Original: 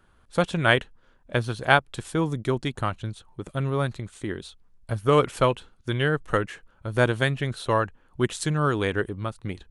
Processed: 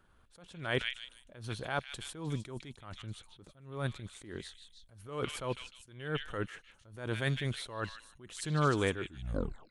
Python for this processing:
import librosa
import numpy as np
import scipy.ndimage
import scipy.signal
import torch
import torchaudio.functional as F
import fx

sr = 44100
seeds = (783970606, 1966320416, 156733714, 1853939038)

y = fx.tape_stop_end(x, sr, length_s=0.74)
y = fx.echo_stepped(y, sr, ms=153, hz=3000.0, octaves=0.7, feedback_pct=70, wet_db=-4.5)
y = fx.attack_slew(y, sr, db_per_s=100.0)
y = y * 10.0 ** (-5.0 / 20.0)